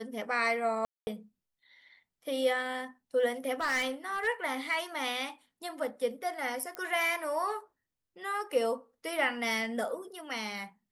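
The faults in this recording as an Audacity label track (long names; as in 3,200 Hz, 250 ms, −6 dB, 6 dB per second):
0.850000	1.070000	drop-out 220 ms
3.540000	4.280000	clipping −27 dBFS
6.750000	6.750000	click −22 dBFS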